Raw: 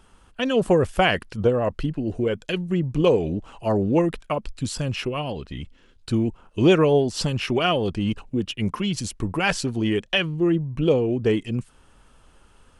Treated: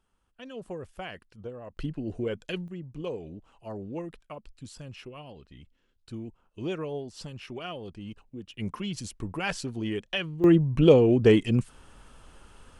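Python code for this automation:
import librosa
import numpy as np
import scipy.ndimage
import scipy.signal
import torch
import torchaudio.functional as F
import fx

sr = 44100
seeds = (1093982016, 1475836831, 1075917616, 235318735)

y = fx.gain(x, sr, db=fx.steps((0.0, -20.0), (1.77, -7.5), (2.68, -16.5), (8.54, -8.5), (10.44, 2.5)))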